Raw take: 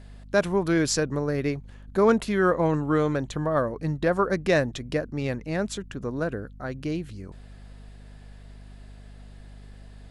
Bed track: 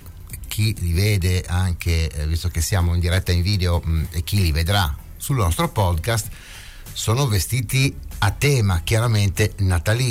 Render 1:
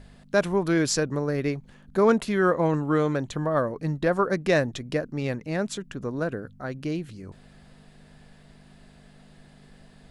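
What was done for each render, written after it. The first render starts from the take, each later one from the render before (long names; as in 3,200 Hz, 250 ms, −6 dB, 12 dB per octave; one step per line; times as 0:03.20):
hum removal 50 Hz, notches 2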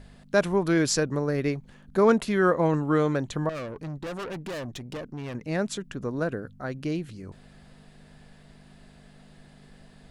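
0:03.49–0:05.35: tube saturation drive 32 dB, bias 0.5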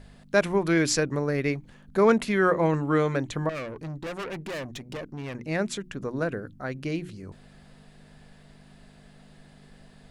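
mains-hum notches 60/120/180/240/300/360 Hz
dynamic equaliser 2,200 Hz, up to +6 dB, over −50 dBFS, Q 2.5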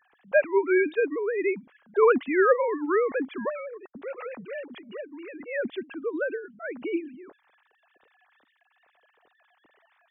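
three sine waves on the formant tracks
tape wow and flutter 27 cents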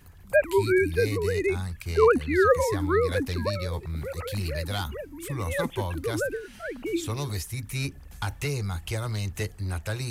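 mix in bed track −12 dB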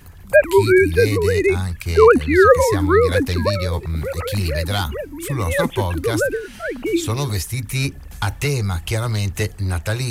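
level +9 dB
brickwall limiter −1 dBFS, peak gain reduction 1.5 dB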